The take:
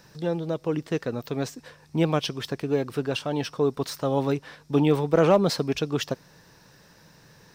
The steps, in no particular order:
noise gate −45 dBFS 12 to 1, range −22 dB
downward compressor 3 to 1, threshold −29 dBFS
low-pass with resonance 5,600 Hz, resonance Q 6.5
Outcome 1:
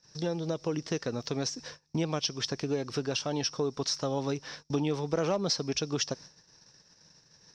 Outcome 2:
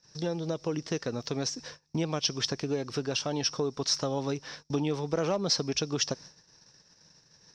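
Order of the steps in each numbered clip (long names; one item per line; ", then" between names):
low-pass with resonance, then downward compressor, then noise gate
downward compressor, then low-pass with resonance, then noise gate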